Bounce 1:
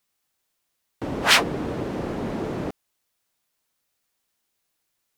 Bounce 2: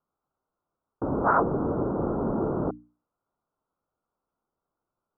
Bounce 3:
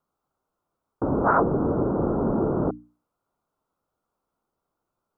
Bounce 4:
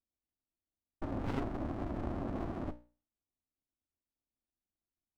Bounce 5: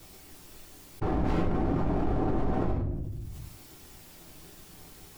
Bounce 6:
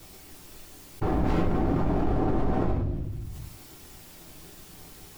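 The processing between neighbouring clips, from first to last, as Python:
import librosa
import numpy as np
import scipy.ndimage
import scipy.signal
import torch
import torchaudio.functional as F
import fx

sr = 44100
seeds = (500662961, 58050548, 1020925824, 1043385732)

y1 = fx.wiener(x, sr, points=9)
y1 = scipy.signal.sosfilt(scipy.signal.cheby1(6, 1.0, 1400.0, 'lowpass', fs=sr, output='sos'), y1)
y1 = fx.hum_notches(y1, sr, base_hz=60, count=5)
y1 = y1 * 10.0 ** (2.5 / 20.0)
y2 = fx.dynamic_eq(y1, sr, hz=1100.0, q=0.87, threshold_db=-33.0, ratio=4.0, max_db=-3)
y2 = y2 * 10.0 ** (4.0 / 20.0)
y3 = fx.fixed_phaser(y2, sr, hz=770.0, stages=8)
y3 = fx.env_lowpass(y3, sr, base_hz=460.0, full_db=-23.5)
y3 = fx.running_max(y3, sr, window=65)
y3 = y3 * 10.0 ** (-8.0 / 20.0)
y4 = fx.whisperise(y3, sr, seeds[0])
y4 = fx.room_shoebox(y4, sr, seeds[1], volume_m3=45.0, walls='mixed', distance_m=0.81)
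y4 = fx.env_flatten(y4, sr, amount_pct=70)
y5 = fx.echo_wet_highpass(y4, sr, ms=200, feedback_pct=79, hz=2500.0, wet_db=-15)
y5 = y5 * 10.0 ** (2.5 / 20.0)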